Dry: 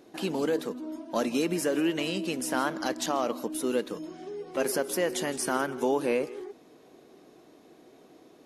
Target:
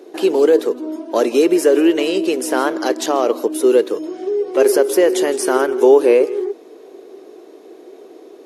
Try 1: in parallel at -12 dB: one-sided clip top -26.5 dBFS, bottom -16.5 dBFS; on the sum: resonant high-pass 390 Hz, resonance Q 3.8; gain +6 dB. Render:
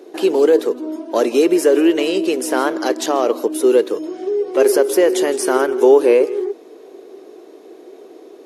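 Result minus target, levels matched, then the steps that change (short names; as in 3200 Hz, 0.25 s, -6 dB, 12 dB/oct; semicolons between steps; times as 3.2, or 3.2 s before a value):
one-sided clip: distortion +11 dB
change: one-sided clip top -20 dBFS, bottom -16.5 dBFS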